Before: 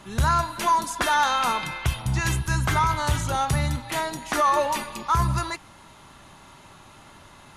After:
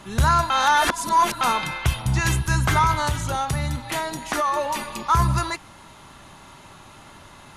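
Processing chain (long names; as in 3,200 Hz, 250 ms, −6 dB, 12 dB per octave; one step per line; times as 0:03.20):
0:00.50–0:01.41: reverse
0:03.07–0:04.99: downward compressor 2 to 1, threshold −27 dBFS, peak gain reduction 6 dB
level +3 dB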